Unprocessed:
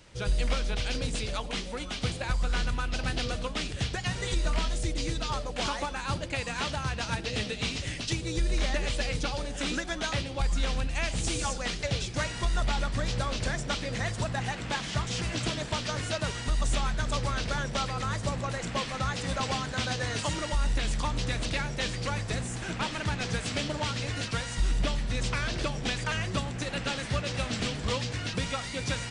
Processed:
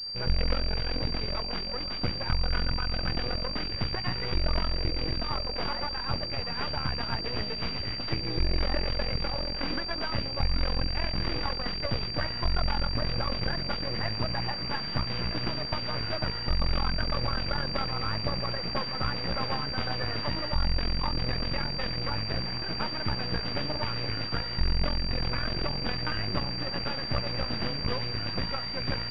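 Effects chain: rattling part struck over -37 dBFS, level -31 dBFS; half-wave rectifier; pulse-width modulation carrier 4700 Hz; gain +4 dB

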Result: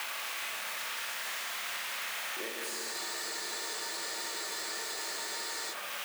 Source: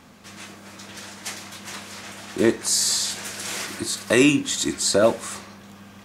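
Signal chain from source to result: switching spikes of -12.5 dBFS; HPF 290 Hz 12 dB/oct; three-band isolator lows -16 dB, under 470 Hz, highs -23 dB, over 2600 Hz; compressor, threshold -27 dBFS, peak gain reduction 11.5 dB; Schroeder reverb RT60 2.4 s, combs from 27 ms, DRR -2 dB; spectral freeze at 2.96, 2.76 s; three-band squash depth 100%; gain -8 dB

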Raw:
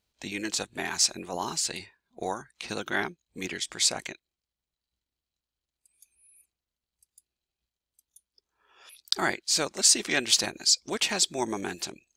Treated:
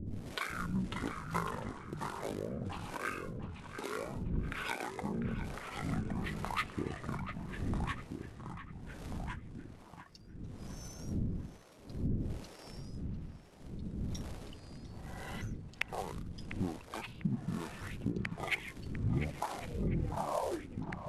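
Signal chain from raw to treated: tape stop at the end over 1.79 s; wind noise 320 Hz -43 dBFS; treble ducked by the level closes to 640 Hz, closed at -23.5 dBFS; LPF 9900 Hz 12 dB/oct; notches 50/100/150/200/250 Hz; compressor 8:1, threshold -40 dBFS, peak gain reduction 20 dB; short-mantissa float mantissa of 2-bit; harmonic tremolo 2 Hz, depth 100%, crossover 770 Hz; echoes that change speed 0.289 s, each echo -2 st, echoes 2, each echo -6 dB; narrowing echo 0.403 s, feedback 42%, band-pass 2300 Hz, level -10 dB; speed mistake 78 rpm record played at 45 rpm; gain +10.5 dB

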